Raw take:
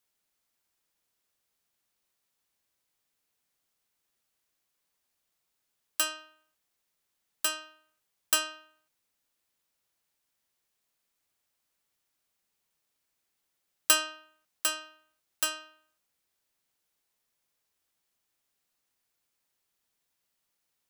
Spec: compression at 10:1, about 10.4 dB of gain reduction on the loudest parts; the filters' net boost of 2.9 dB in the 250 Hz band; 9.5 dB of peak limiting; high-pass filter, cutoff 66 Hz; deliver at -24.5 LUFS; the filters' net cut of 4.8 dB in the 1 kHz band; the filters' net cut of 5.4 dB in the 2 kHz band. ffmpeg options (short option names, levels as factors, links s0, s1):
-af "highpass=66,equalizer=f=250:t=o:g=4.5,equalizer=f=1000:t=o:g=-3.5,equalizer=f=2000:t=o:g=-7,acompressor=threshold=0.0316:ratio=10,volume=8.91,alimiter=limit=0.75:level=0:latency=1"